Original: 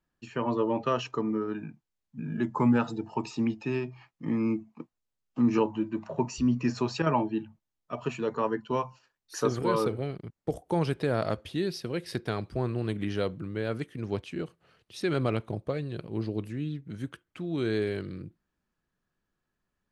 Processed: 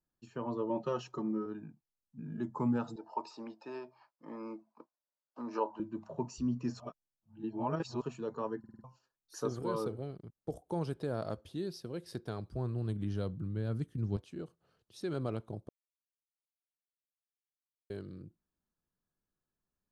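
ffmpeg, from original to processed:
-filter_complex "[0:a]asettb=1/sr,asplit=3[a][b][c];[a]atrim=end=0.694[d];[b]atrim=start=0.69:end=1.46,asetpts=PTS-STARTPTS,afade=t=in:d=0.004:c=qsin,afade=t=out:st=0.766:d=0.004:c=qsin,aecho=1:1:5.5:0.83,atrim=end_sample=33957[e];[c]atrim=start=1.456[f];[d][e]acrossfade=d=0.004:c1=hsin:c2=qsin[g];[g][f]acrossfade=d=0.004:c1=qsin:c2=hsin,asettb=1/sr,asplit=3[h][i][j];[h]atrim=end=2.964[k];[i]atrim=start=2.96:end=5.8,asetpts=PTS-STARTPTS,afade=t=in:d=0.004:c=qsin,afade=t=out:st=2.836:d=0.004:c=qsin,highpass=440,equalizer=f=590:t=q:w=4:g=10,equalizer=f=970:t=q:w=4:g=8,equalizer=f=1.5k:t=q:w=4:g=7,equalizer=f=3.2k:t=q:w=4:g=-3,equalizer=f=4.7k:t=q:w=4:g=5,equalizer=f=6.7k:t=q:w=4:g=-8,lowpass=f=8.4k:w=0.5412,lowpass=f=8.4k:w=1.3066[l];[j]atrim=start=5.796[m];[k][l]acrossfade=d=0.004:c1=hsin:c2=qsin[n];[n][m]acrossfade=d=0.004:c1=qsin:c2=hsin,asettb=1/sr,asplit=3[o][p][q];[o]atrim=end=12.234[r];[p]atrim=start=12.23:end=14.17,asetpts=PTS-STARTPTS,afade=t=in:d=0.004:c=qsin,afade=t=out:st=1.936:d=0.004:c=qsin,asubboost=boost=7.5:cutoff=220[s];[q]atrim=start=14.166[t];[r][s]acrossfade=d=0.004:c1=hsin:c2=qsin[u];[u][t]acrossfade=d=0.004:c1=qsin:c2=hsin,asplit=10[v][w][x][y][z][aa][ab][ac][ad][ae];[v]atrim=end=6.802[af];[w]atrim=start=6.798:end=8.022,asetpts=PTS-STARTPTS,areverse[ag];[x]atrim=start=8.018:end=8.642[ah];[y]atrim=start=8.588:end=8.642[ai];[z]atrim=start=8.588:end=8.642[aj];[aa]atrim=start=8.588:end=8.642[ak];[ab]atrim=start=8.588:end=8.642[al];[ac]atrim=start=8.838:end=15.69,asetpts=PTS-STARTPTS,afade=t=out:st=6.848:d=0.004:c=hsin[am];[ad]atrim=start=15.69:end=17.9,asetpts=PTS-STARTPTS,volume=0[an];[ae]atrim=start=17.9,asetpts=PTS-STARTPTS,afade=t=in:d=0.004:c=hsin[ao];[af][ag]acrossfade=d=0.004:c1=hsin:c2=hsin[ap];[ap][ah]acrossfade=d=0.004:c1=hsin:c2=hsin[aq];[aq][ai]acrossfade=d=0.004:c1=hsin:c2=hsin[ar];[ar][aj]acrossfade=d=0.004:c1=hsin:c2=hsin[as];[as][ak]acrossfade=d=0.004:c1=hsin:c2=hsin[at];[at][al]acrossfade=d=0.004:c1=hsin:c2=hsin[au];[am][an][ao]concat=n=3:v=0:a=1[av];[au][av]acrossfade=d=0.004:c1=hsin:c2=hsin,equalizer=f=2.3k:w=1.3:g=-10.5,bandreject=f=1.9k:w=24,volume=-8dB"

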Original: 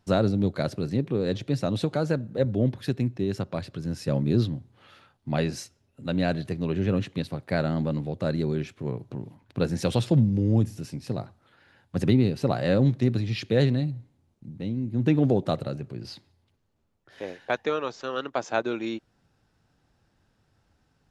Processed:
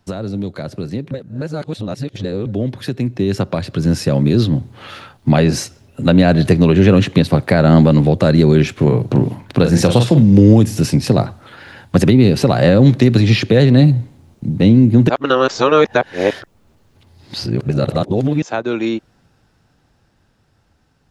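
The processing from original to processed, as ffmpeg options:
-filter_complex "[0:a]asettb=1/sr,asplit=3[a][b][c];[a]atrim=end=8.744[d];[b]atrim=start=8.74:end=10.22,asetpts=PTS-STARTPTS,afade=t=in:d=0.004:c=qsin,afade=t=out:st=1.476:d=0.004:c=qsin,asplit=2[e][f];[f]adelay=41,volume=-8dB[g];[e][g]amix=inputs=2:normalize=0,atrim=end_sample=65268[h];[c]atrim=start=10.216[i];[d][h]acrossfade=d=0.004:c1=hsin:c2=qsin[j];[j][i]acrossfade=d=0.004:c1=qsin:c2=hsin,asplit=5[k][l][m][n][o];[k]atrim=end=1.112[p];[l]atrim=start=1.108:end=2.462,asetpts=PTS-STARTPTS,areverse[q];[m]atrim=start=2.458:end=15.092[r];[n]atrim=start=15.088:end=18.422,asetpts=PTS-STARTPTS,areverse[s];[o]atrim=start=18.418[t];[p][q]acrossfade=d=0.004:c1=hsin:c2=hsin[u];[u][r]acrossfade=d=0.004:c1=hsin:c2=hsin[v];[v][s]acrossfade=d=0.004:c1=hsin:c2=hsin[w];[w][t]acrossfade=d=0.004:c1=hsin:c2=hsin,acrossover=split=190|1600[x][y][z];[x]acompressor=threshold=-32dB:ratio=4[aa];[y]acompressor=threshold=-28dB:ratio=4[ab];[z]acompressor=threshold=-42dB:ratio=4[ac];[aa][ab][ac]amix=inputs=3:normalize=0,alimiter=limit=-22.5dB:level=0:latency=1:release=252,dynaudnorm=f=370:g=21:m=14dB,volume=7.5dB"

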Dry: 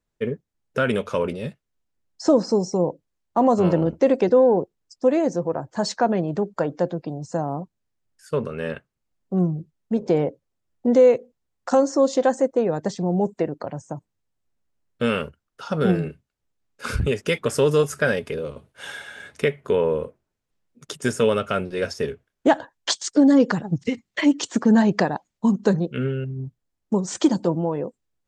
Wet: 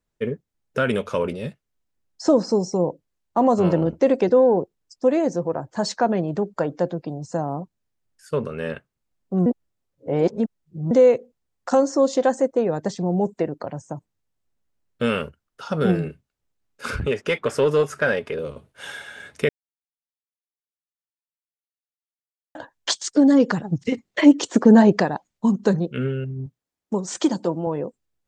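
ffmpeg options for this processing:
-filter_complex "[0:a]asettb=1/sr,asplit=3[a][b][c];[a]atrim=end=16.904[d];[b]atrim=start=16.9:end=18.39,asetpts=PTS-STARTPTS,afade=t=in:d=0.004:c=qsin,afade=t=out:st=1.486:d=0.004:c=qsin,asplit=2[e][f];[f]highpass=f=720:p=1,volume=10dB,asoftclip=type=tanh:threshold=-8.5dB[g];[e][g]amix=inputs=2:normalize=0,lowpass=f=1.7k:p=1,volume=-6dB[h];[c]atrim=start=18.386[i];[d][h]acrossfade=d=0.004:c1=hsin:c2=qsin[j];[j][i]acrossfade=d=0.004:c1=qsin:c2=hsin,asettb=1/sr,asplit=3[k][l][m];[k]atrim=end=23.924[n];[l]atrim=start=23.92:end=24.97,asetpts=PTS-STARTPTS,afade=t=in:d=0.004:c=qsin,afade=t=out:st=1.046:d=0.004:c=qsin,equalizer=f=470:t=o:w=2:g=8[o];[m]atrim=start=24.966[p];[n][o]acrossfade=d=0.004:c1=hsin:c2=qsin[q];[q][p]acrossfade=d=0.004:c1=qsin:c2=hsin,asettb=1/sr,asplit=3[r][s][t];[r]atrim=end=26.464[u];[s]atrim=start=26.46:end=27.67,asetpts=PTS-STARTPTS,afade=t=in:d=0.004:c=qsin,afade=t=out:st=1.206:d=0.004:c=qsin,highpass=f=240:p=1[v];[t]atrim=start=27.666[w];[u][v]acrossfade=d=0.004:c1=hsin:c2=qsin[x];[x][w]acrossfade=d=0.004:c1=qsin:c2=hsin,asplit=5[y][z][aa][ab][ac];[y]atrim=end=9.462[ad];[z]atrim=start=9.458:end=10.912,asetpts=PTS-STARTPTS,areverse[ae];[aa]atrim=start=10.908:end=19.49,asetpts=PTS-STARTPTS,afade=t=out:st=8.578:d=0.004:c=hsin[af];[ab]atrim=start=19.49:end=22.55,asetpts=PTS-STARTPTS,volume=0[ag];[ac]atrim=start=22.55,asetpts=PTS-STARTPTS,afade=t=in:d=0.004:c=hsin[ah];[ad][ae]acrossfade=d=0.004:c1=hsin:c2=hsin[ai];[af][ag][ah]concat=n=3:v=0:a=1[aj];[ai][aj]acrossfade=d=0.004:c1=hsin:c2=hsin"

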